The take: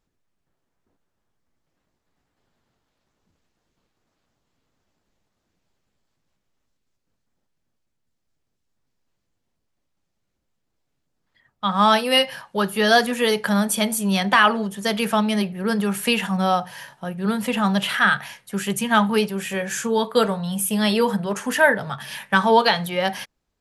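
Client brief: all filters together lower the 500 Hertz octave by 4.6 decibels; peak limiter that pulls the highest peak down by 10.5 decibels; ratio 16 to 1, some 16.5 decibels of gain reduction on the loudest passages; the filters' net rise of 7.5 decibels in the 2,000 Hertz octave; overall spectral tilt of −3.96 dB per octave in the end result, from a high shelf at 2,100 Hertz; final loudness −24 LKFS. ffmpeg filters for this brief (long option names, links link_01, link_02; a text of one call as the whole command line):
ffmpeg -i in.wav -af "equalizer=frequency=500:width_type=o:gain=-6.5,equalizer=frequency=2000:width_type=o:gain=8.5,highshelf=frequency=2100:gain=3.5,acompressor=threshold=-23dB:ratio=16,volume=5.5dB,alimiter=limit=-14dB:level=0:latency=1" out.wav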